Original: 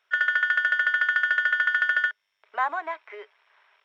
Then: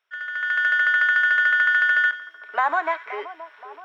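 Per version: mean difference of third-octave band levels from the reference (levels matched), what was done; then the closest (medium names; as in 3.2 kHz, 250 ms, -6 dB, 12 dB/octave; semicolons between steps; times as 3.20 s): 2.5 dB: peak limiter -19 dBFS, peak gain reduction 7.5 dB; level rider gain up to 15 dB; two-band feedback delay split 1.3 kHz, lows 524 ms, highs 90 ms, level -13.5 dB; trim -6.5 dB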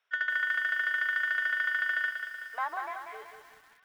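4.0 dB: frequency shift +24 Hz; feedback echo behind a high-pass 210 ms, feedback 74%, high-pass 1.6 kHz, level -15 dB; bit-crushed delay 188 ms, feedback 55%, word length 8-bit, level -6 dB; trim -7.5 dB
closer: first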